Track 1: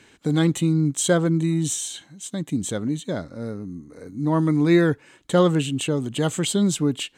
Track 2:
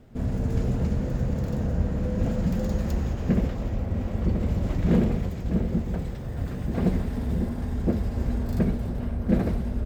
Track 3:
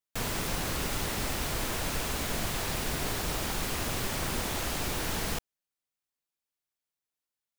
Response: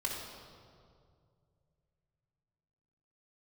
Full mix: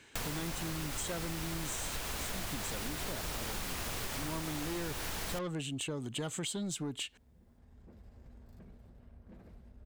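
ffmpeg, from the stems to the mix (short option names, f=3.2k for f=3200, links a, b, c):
-filter_complex "[0:a]asoftclip=type=tanh:threshold=-15.5dB,volume=-4.5dB,asplit=2[a][b];[1:a]aeval=exprs='0.376*(cos(1*acos(clip(val(0)/0.376,-1,1)))-cos(1*PI/2))+0.0299*(cos(7*acos(clip(val(0)/0.376,-1,1)))-cos(7*PI/2))':c=same,asoftclip=type=tanh:threshold=-20.5dB,alimiter=level_in=1.5dB:limit=-24dB:level=0:latency=1:release=31,volume=-1.5dB,volume=-19dB[c];[2:a]volume=2.5dB[d];[b]apad=whole_len=434458[e];[c][e]sidechaincompress=threshold=-39dB:ratio=8:attack=16:release=1050[f];[a][f][d]amix=inputs=3:normalize=0,equalizer=f=230:w=0.47:g=-4.5,acompressor=threshold=-35dB:ratio=6"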